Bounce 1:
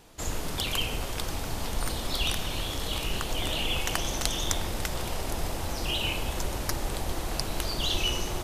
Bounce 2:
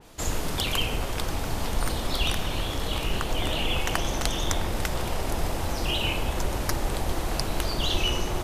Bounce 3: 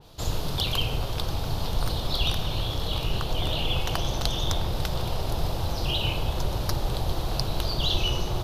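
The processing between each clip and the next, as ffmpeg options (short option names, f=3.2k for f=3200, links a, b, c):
-af "adynamicequalizer=threshold=0.00708:dfrequency=2800:dqfactor=0.7:tfrequency=2800:tqfactor=0.7:attack=5:release=100:ratio=0.375:range=3:mode=cutabove:tftype=highshelf,volume=4dB"
-af "equalizer=f=125:t=o:w=1:g=7,equalizer=f=250:t=o:w=1:g=-6,equalizer=f=2k:t=o:w=1:g=-10,equalizer=f=4k:t=o:w=1:g=8,equalizer=f=8k:t=o:w=1:g=-10"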